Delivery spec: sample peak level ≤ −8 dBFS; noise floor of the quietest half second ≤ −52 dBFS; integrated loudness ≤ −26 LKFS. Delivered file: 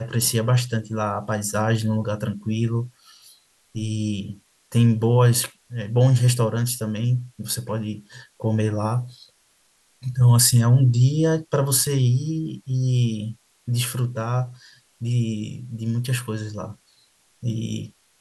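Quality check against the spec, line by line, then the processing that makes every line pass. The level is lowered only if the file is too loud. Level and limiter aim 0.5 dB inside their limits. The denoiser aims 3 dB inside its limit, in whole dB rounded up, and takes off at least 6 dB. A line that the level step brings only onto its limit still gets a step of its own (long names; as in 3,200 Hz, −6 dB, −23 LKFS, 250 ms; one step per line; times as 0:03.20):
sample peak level −4.0 dBFS: out of spec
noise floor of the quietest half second −62 dBFS: in spec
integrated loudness −22.0 LKFS: out of spec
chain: level −4.5 dB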